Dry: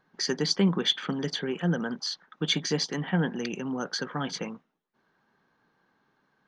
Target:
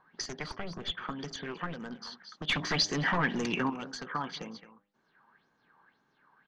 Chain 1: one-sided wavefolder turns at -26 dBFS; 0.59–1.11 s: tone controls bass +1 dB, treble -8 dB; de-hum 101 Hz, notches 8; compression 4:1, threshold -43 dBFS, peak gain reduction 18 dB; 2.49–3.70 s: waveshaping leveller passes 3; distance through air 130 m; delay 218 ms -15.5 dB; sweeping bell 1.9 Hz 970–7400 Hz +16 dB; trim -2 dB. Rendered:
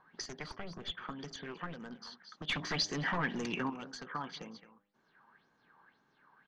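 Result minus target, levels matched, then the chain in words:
compression: peak gain reduction +5 dB
one-sided wavefolder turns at -26 dBFS; 0.59–1.11 s: tone controls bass +1 dB, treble -8 dB; de-hum 101 Hz, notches 8; compression 4:1, threshold -36 dBFS, peak gain reduction 13 dB; 2.49–3.70 s: waveshaping leveller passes 3; distance through air 130 m; delay 218 ms -15.5 dB; sweeping bell 1.9 Hz 970–7400 Hz +16 dB; trim -2 dB

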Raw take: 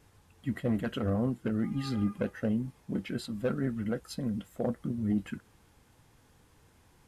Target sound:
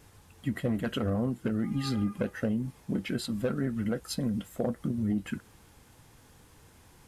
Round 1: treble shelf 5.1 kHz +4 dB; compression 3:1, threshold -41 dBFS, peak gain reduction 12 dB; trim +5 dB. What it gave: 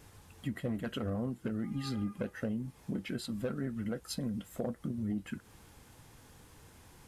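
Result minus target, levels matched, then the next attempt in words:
compression: peak gain reduction +6 dB
treble shelf 5.1 kHz +4 dB; compression 3:1, threshold -32 dBFS, peak gain reduction 6 dB; trim +5 dB

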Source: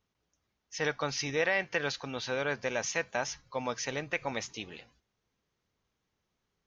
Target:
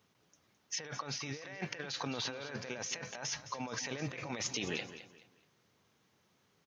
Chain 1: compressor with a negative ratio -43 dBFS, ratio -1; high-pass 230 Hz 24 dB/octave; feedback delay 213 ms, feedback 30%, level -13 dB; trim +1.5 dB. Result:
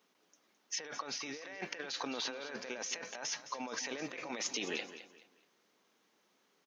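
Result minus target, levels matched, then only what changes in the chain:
125 Hz band -14.5 dB
change: high-pass 99 Hz 24 dB/octave

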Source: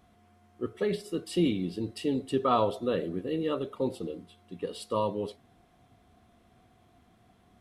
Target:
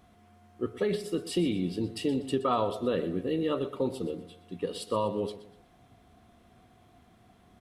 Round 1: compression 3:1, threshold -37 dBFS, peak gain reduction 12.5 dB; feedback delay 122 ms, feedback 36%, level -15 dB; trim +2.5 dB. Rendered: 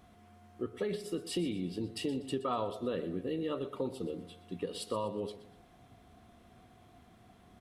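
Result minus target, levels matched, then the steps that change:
compression: peak gain reduction +6.5 dB
change: compression 3:1, threshold -27 dBFS, peak gain reduction 6 dB

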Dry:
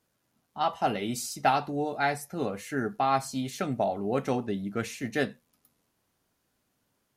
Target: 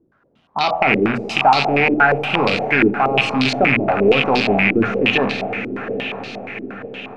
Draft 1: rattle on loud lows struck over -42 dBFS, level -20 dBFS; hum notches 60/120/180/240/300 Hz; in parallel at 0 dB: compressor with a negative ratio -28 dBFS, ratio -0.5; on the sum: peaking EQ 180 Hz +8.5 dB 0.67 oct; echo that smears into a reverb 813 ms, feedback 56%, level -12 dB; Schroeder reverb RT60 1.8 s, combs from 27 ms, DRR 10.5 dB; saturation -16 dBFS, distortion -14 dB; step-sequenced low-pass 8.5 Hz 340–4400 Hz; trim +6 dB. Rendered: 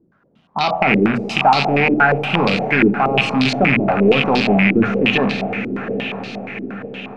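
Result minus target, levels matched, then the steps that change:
250 Hz band +2.5 dB
remove: peaking EQ 180 Hz +8.5 dB 0.67 oct

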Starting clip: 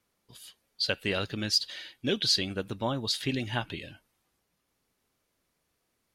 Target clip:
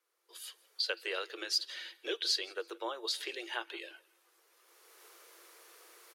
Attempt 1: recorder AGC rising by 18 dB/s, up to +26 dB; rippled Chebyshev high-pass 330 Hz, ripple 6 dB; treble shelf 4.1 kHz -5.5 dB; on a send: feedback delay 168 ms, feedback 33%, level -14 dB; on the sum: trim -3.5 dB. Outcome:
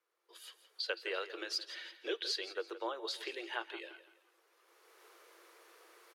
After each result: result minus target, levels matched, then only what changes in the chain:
echo-to-direct +9.5 dB; 8 kHz band -4.0 dB
change: feedback delay 168 ms, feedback 33%, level -23.5 dB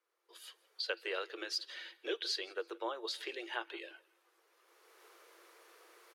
8 kHz band -4.5 dB
change: treble shelf 4.1 kHz +5 dB

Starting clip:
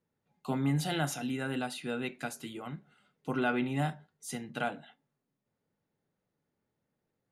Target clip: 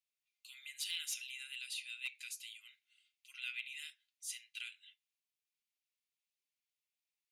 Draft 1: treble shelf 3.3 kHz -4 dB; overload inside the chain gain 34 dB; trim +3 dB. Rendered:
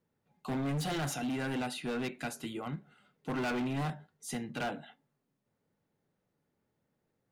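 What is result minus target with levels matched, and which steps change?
2 kHz band -2.5 dB
add first: elliptic high-pass 2.4 kHz, stop band 70 dB

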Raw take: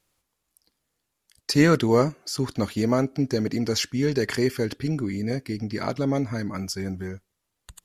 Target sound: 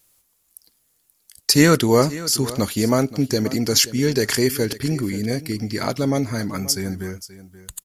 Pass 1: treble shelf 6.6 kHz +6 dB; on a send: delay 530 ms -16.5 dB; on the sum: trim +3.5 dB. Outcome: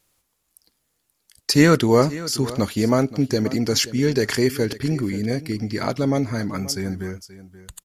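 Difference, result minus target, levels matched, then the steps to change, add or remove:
8 kHz band -5.0 dB
change: treble shelf 6.6 kHz +17.5 dB

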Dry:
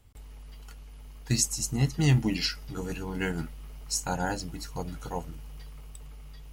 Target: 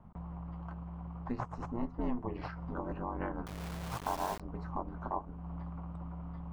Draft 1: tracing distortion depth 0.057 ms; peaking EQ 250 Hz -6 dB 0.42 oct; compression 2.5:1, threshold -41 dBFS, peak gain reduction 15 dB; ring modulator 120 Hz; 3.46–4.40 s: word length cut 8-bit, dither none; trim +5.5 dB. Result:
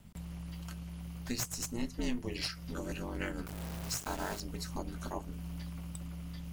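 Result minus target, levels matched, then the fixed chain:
1 kHz band -7.5 dB
tracing distortion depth 0.057 ms; resonant low-pass 970 Hz, resonance Q 4.3; peaking EQ 250 Hz -6 dB 0.42 oct; compression 2.5:1, threshold -41 dBFS, peak gain reduction 15 dB; ring modulator 120 Hz; 3.46–4.40 s: word length cut 8-bit, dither none; trim +5.5 dB

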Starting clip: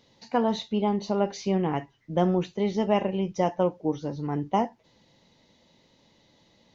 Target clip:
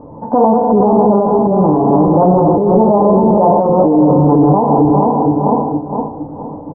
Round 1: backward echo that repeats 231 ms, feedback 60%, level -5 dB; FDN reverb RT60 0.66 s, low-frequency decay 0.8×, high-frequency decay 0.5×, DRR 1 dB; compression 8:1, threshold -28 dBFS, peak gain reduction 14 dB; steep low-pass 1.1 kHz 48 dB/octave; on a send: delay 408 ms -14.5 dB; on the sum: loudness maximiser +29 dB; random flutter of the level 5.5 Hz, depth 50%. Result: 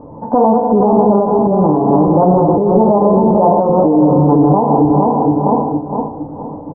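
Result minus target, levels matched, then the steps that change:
compression: peak gain reduction +8 dB
change: compression 8:1, threshold -19 dBFS, peak gain reduction 6.5 dB

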